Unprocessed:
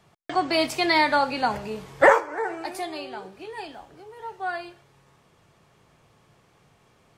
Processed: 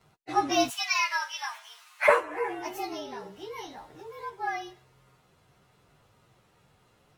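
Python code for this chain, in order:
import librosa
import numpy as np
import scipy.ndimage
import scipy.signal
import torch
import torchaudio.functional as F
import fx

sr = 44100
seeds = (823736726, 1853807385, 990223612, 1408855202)

y = fx.partial_stretch(x, sr, pct=108)
y = fx.bessel_highpass(y, sr, hz=1500.0, order=8, at=(0.69, 2.07), fade=0.02)
y = fx.band_squash(y, sr, depth_pct=40, at=(2.93, 4.3))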